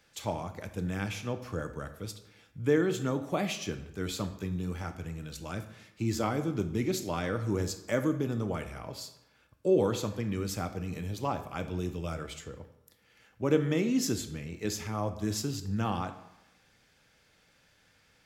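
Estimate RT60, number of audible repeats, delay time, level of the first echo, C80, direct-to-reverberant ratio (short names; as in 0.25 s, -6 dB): 0.95 s, none, none, none, 14.5 dB, 9.5 dB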